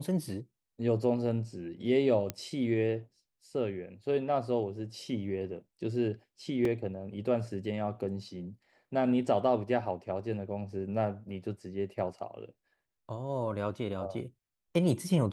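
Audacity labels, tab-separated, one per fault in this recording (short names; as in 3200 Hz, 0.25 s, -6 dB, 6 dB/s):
2.300000	2.300000	pop -16 dBFS
6.650000	6.650000	gap 3.2 ms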